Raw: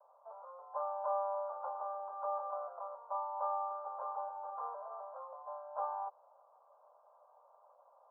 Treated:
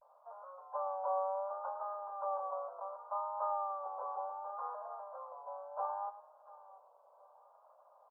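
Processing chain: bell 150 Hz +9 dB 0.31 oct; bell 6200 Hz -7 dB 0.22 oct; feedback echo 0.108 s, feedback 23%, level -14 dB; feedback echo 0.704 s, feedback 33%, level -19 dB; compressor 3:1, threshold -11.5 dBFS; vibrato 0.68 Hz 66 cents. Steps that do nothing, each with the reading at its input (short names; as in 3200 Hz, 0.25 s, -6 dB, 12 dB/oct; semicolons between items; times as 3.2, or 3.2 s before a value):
bell 150 Hz: input band starts at 430 Hz; bell 6200 Hz: input band ends at 1400 Hz; compressor, threshold -11.5 dBFS: input peak -25.0 dBFS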